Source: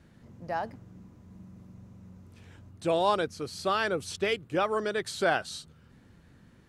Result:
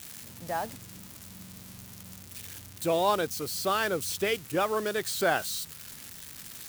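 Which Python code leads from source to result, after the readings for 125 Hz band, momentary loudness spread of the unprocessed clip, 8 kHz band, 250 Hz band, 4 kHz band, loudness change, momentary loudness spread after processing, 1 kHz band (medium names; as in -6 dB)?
0.0 dB, 11 LU, +8.5 dB, 0.0 dB, +2.0 dB, +0.5 dB, 18 LU, 0.0 dB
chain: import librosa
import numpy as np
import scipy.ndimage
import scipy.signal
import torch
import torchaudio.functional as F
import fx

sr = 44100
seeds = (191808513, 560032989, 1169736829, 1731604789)

y = x + 0.5 * 10.0 ** (-29.5 / 20.0) * np.diff(np.sign(x), prepend=np.sign(x[:1]))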